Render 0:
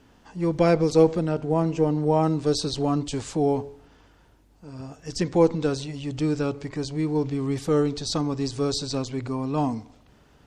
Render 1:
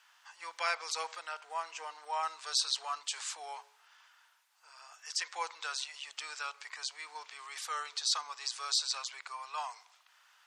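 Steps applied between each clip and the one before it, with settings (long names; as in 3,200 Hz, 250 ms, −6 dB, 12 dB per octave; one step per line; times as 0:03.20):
inverse Chebyshev high-pass filter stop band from 240 Hz, stop band 70 dB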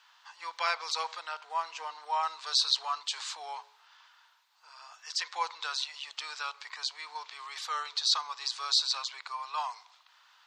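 graphic EQ with 15 bands 1,000 Hz +6 dB, 4,000 Hz +8 dB, 10,000 Hz −10 dB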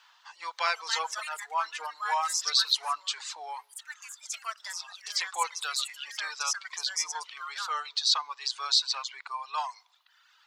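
delay with pitch and tempo change per echo 433 ms, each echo +5 semitones, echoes 2, each echo −6 dB
reverb reduction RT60 1.2 s
level +2.5 dB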